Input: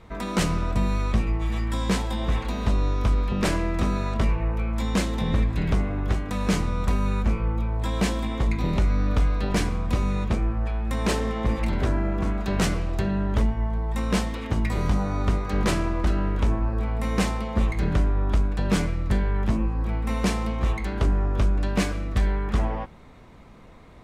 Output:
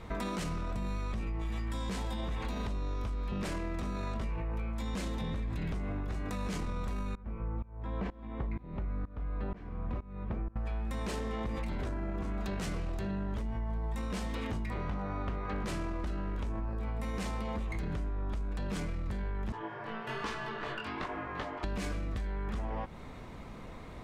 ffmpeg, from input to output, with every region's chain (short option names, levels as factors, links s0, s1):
-filter_complex "[0:a]asettb=1/sr,asplit=3[s0][s1][s2];[s0]atrim=end=6.044[s3];[s1]atrim=start=6.04:end=6.46,asetpts=PTS-STARTPTS,afade=t=in:d=0.004:c=qsin,afade=t=out:st=0.416:d=0.004:c=qsin,bandreject=f=3200:w=13,acompressor=threshold=0.0447:ratio=3:attack=3.2:release=140:knee=1:detection=peak[s4];[s2]atrim=start=6.456[s5];[s3][s4]acrossfade=d=0.004:c1=hsin:c2=qsin[s6];[s6][s5]acrossfade=d=0.004:c1=qsin:c2=hsin,asettb=1/sr,asplit=3[s7][s8][s9];[s7]atrim=end=7.154[s10];[s8]atrim=start=7.15:end=10.56,asetpts=PTS-STARTPTS,afade=t=in:d=0.004:c=qsin,afade=t=out:st=3.406:d=0.004:c=qsin,lowpass=1700,aeval=exprs='val(0)*pow(10,-27*if(lt(mod(-2.1*n/s,1),2*abs(-2.1)/1000),1-mod(-2.1*n/s,1)/(2*abs(-2.1)/1000),(mod(-2.1*n/s,1)-2*abs(-2.1)/1000)/(1-2*abs(-2.1)/1000))/20)':c=same[s11];[s9]atrim=start=10.556[s12];[s10][s11]acrossfade=d=0.004:c1=hsin:c2=qsin[s13];[s13][s12]acrossfade=d=0.004:c1=qsin:c2=hsin,asettb=1/sr,asplit=3[s14][s15][s16];[s14]atrim=end=14.704[s17];[s15]atrim=start=14.7:end=15.65,asetpts=PTS-STARTPTS,afade=t=in:d=0.004:c=qsin,afade=t=out:st=0.946:d=0.004:c=qsin,lowpass=2500,lowshelf=f=440:g=-5.5,asoftclip=type=hard:threshold=0.0841[s18];[s16]atrim=start=15.646[s19];[s17][s18]acrossfade=d=0.004:c1=hsin:c2=qsin[s20];[s20][s19]acrossfade=d=0.004:c1=qsin:c2=hsin,asettb=1/sr,asplit=3[s21][s22][s23];[s21]atrim=end=19.524[s24];[s22]atrim=start=19.52:end=21.64,asetpts=PTS-STARTPTS,afade=t=in:d=0.004:c=qsin,afade=t=out:st=2.116:d=0.004:c=qsin,acrossover=split=270 4700:gain=0.0891 1 0.2[s25][s26][s27];[s25][s26][s27]amix=inputs=3:normalize=0,aeval=exprs='val(0)*sin(2*PI*660*n/s)':c=same,flanger=delay=17:depth=5.6:speed=1.1[s28];[s23]atrim=start=21.636[s29];[s24][s28]acrossfade=d=0.004:c1=hsin:c2=qsin[s30];[s30][s29]acrossfade=d=0.004:c1=qsin:c2=hsin,alimiter=limit=0.0668:level=0:latency=1:release=19,acompressor=threshold=0.0178:ratio=6,volume=1.33"